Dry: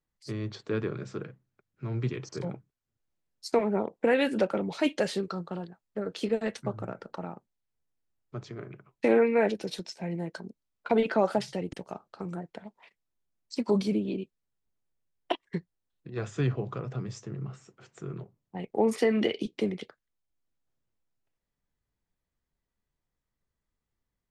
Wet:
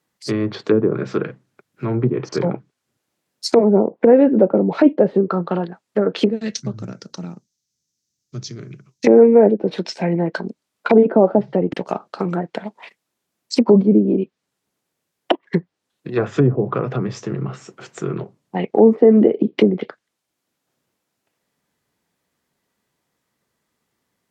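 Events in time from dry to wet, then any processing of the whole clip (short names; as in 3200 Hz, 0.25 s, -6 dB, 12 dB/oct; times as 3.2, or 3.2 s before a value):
6.3–9.07 EQ curve 140 Hz 0 dB, 800 Hz -22 dB, 2900 Hz -9 dB, 6100 Hz +11 dB, 9100 Hz -7 dB
whole clip: treble ducked by the level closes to 530 Hz, closed at -26 dBFS; HPF 180 Hz 12 dB/oct; maximiser +17.5 dB; gain -1 dB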